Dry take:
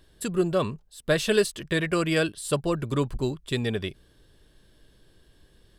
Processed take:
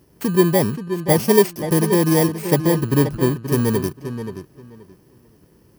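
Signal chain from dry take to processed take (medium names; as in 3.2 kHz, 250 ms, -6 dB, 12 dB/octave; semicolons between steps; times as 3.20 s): bit-reversed sample order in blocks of 32 samples; high-pass 120 Hz 12 dB/octave; tilt shelf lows +5.5 dB, about 880 Hz; on a send: filtered feedback delay 528 ms, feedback 20%, low-pass 4.5 kHz, level -9.5 dB; on the sum: trim +6.5 dB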